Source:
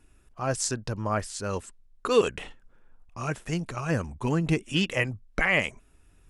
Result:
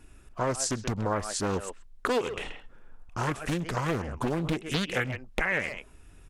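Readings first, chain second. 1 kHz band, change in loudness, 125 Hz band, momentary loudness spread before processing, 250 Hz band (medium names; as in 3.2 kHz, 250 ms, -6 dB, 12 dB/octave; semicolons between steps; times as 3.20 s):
+0.5 dB, -2.5 dB, -2.5 dB, 12 LU, -2.0 dB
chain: speakerphone echo 130 ms, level -12 dB; compression 5:1, threshold -32 dBFS, peak gain reduction 15.5 dB; loudspeaker Doppler distortion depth 0.97 ms; trim +6.5 dB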